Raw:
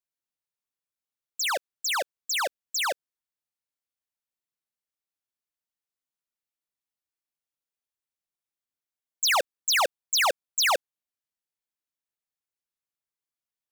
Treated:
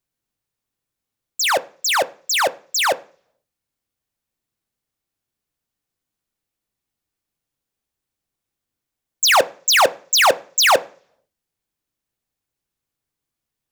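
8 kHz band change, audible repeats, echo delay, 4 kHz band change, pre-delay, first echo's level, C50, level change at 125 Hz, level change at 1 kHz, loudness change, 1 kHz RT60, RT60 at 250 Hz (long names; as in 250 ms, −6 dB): +8.0 dB, no echo audible, no echo audible, +8.0 dB, 3 ms, no echo audible, 22.0 dB, can't be measured, +10.0 dB, +9.0 dB, 0.40 s, 0.70 s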